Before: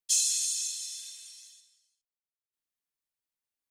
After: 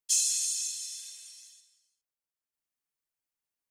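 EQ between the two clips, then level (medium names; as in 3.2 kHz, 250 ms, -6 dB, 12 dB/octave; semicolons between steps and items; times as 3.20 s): peaking EQ 3.7 kHz -4.5 dB 0.44 oct; 0.0 dB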